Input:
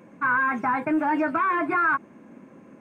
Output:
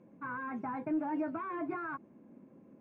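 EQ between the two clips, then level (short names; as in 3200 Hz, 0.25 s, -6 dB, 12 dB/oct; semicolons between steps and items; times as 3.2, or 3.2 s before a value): air absorption 55 m; bell 1500 Hz -8 dB 1.7 oct; high shelf 2300 Hz -11.5 dB; -8.0 dB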